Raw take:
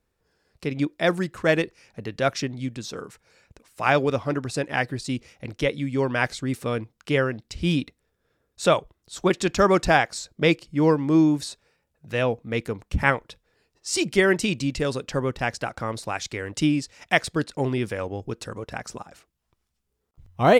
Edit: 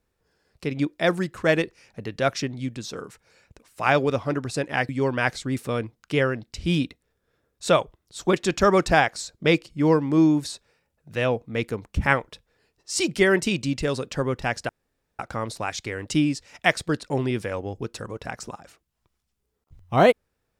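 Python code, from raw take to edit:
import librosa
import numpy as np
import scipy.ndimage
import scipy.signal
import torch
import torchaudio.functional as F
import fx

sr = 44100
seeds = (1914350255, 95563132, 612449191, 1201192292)

y = fx.edit(x, sr, fx.cut(start_s=4.89, length_s=0.97),
    fx.insert_room_tone(at_s=15.66, length_s=0.5), tone=tone)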